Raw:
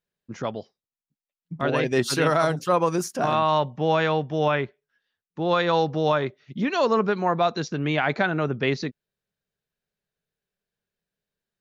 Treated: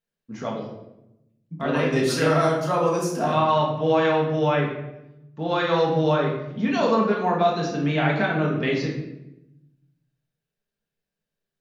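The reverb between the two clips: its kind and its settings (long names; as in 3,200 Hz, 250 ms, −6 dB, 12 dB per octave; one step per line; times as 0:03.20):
rectangular room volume 310 cubic metres, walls mixed, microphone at 1.6 metres
level −4.5 dB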